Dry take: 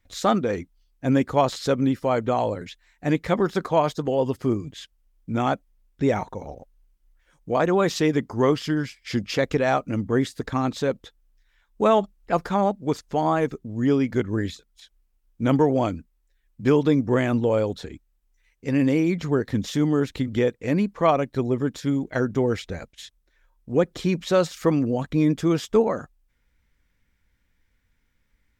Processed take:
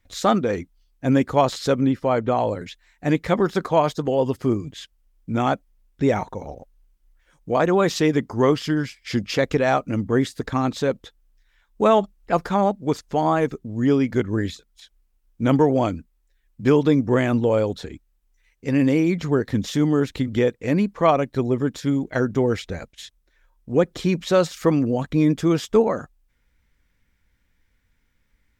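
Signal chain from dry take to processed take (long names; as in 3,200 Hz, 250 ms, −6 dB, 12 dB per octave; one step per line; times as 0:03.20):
0:01.81–0:02.48: low-pass filter 3,800 Hz 6 dB per octave
level +2 dB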